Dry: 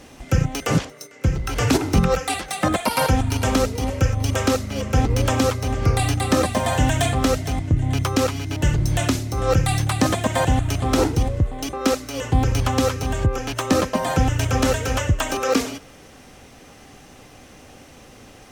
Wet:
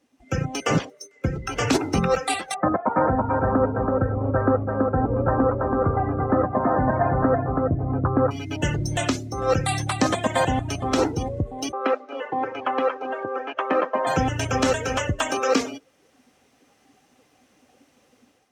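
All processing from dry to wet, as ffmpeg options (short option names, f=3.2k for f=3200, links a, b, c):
-filter_complex "[0:a]asettb=1/sr,asplit=3[a][b][c];[a]atrim=end=2.544[d];[b]atrim=start=2.54:end=8.31,asetpts=PTS-STARTPTS,afade=t=in:d=0.004:c=qsin,afade=t=out:st=5.766:d=0.004:c=qsin,lowpass=f=1.5k:w=0.5412,lowpass=f=1.5k:w=1.3066,aecho=1:1:329|658|987:0.708|0.163|0.0375,atrim=end_sample=254457[e];[c]atrim=start=8.306[f];[d][e]acrossfade=d=0.004:c1=hsin:c2=qsin[g];[g][f]acrossfade=d=0.004:c1=qsin:c2=hsin,asettb=1/sr,asplit=3[h][i][j];[h]atrim=end=11.724[k];[i]atrim=start=11.72:end=14.07,asetpts=PTS-STARTPTS,afade=t=in:d=0.004:c=qsin,afade=t=out:st=2.346:d=0.004:c=qsin,highpass=420,lowpass=2.4k,aecho=1:1:265:0.188,atrim=end_sample=103635[l];[j]atrim=start=14.066[m];[k][l]acrossfade=d=0.004:c1=hsin:c2=qsin[n];[n][m]acrossfade=d=0.004:c1=qsin:c2=hsin,highpass=f=230:p=1,afftdn=nr=18:nf=-33,dynaudnorm=f=140:g=5:m=10dB,volume=-6.5dB"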